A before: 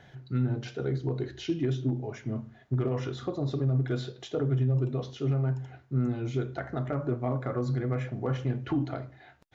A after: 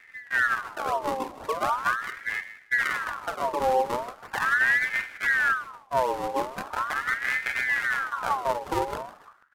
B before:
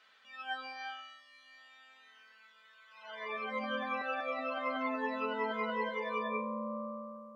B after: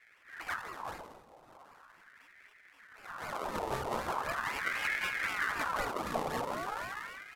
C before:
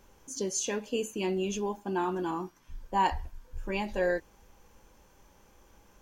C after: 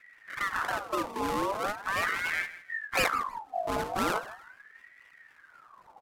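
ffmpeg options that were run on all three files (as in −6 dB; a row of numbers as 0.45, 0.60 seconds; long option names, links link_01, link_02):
-af "acrusher=samples=36:mix=1:aa=0.000001:lfo=1:lforange=36:lforate=3.9,aecho=1:1:157|314:0.158|0.038,aresample=32000,aresample=44100,lowshelf=frequency=420:gain=7,bandreject=frequency=52.97:width_type=h:width=4,bandreject=frequency=105.94:width_type=h:width=4,bandreject=frequency=158.91:width_type=h:width=4,bandreject=frequency=211.88:width_type=h:width=4,bandreject=frequency=264.85:width_type=h:width=4,bandreject=frequency=317.82:width_type=h:width=4,bandreject=frequency=370.79:width_type=h:width=4,bandreject=frequency=423.76:width_type=h:width=4,bandreject=frequency=476.73:width_type=h:width=4,bandreject=frequency=529.7:width_type=h:width=4,aeval=exprs='val(0)*sin(2*PI*1300*n/s+1300*0.5/0.4*sin(2*PI*0.4*n/s))':channel_layout=same"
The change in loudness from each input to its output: +4.5, +1.5, +1.0 LU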